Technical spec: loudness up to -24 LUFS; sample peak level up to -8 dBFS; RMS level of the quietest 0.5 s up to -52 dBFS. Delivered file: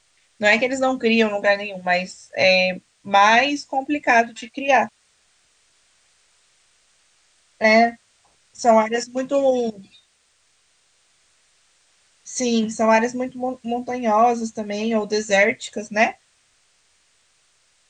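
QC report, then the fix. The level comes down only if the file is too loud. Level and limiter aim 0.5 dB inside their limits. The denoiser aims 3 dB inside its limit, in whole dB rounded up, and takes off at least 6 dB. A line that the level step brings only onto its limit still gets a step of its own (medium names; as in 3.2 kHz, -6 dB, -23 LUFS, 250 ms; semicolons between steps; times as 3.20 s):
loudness -19.5 LUFS: fail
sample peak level -4.5 dBFS: fail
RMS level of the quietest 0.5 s -63 dBFS: pass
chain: trim -5 dB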